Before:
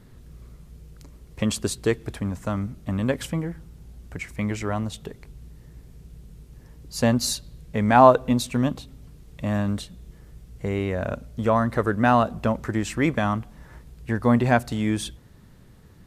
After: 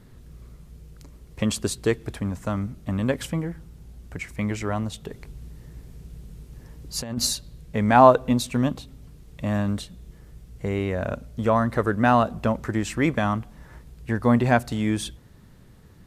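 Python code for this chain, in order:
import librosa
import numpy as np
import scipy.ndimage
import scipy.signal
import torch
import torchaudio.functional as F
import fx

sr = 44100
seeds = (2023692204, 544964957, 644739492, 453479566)

y = fx.over_compress(x, sr, threshold_db=-24.0, ratio=-0.5, at=(5.1, 7.26), fade=0.02)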